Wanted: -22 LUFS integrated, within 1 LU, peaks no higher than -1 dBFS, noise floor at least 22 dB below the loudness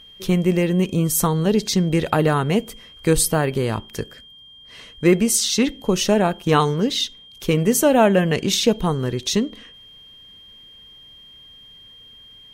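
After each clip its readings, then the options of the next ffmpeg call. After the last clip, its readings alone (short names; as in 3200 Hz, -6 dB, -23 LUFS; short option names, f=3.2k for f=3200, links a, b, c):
steady tone 3200 Hz; tone level -43 dBFS; loudness -19.5 LUFS; peak -4.0 dBFS; loudness target -22.0 LUFS
-> -af "bandreject=f=3.2k:w=30"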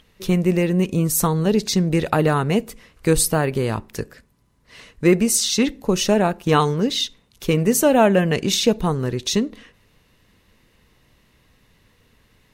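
steady tone none; loudness -19.5 LUFS; peak -4.0 dBFS; loudness target -22.0 LUFS
-> -af "volume=-2.5dB"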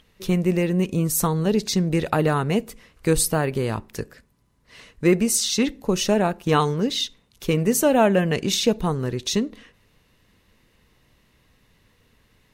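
loudness -22.0 LUFS; peak -6.5 dBFS; noise floor -63 dBFS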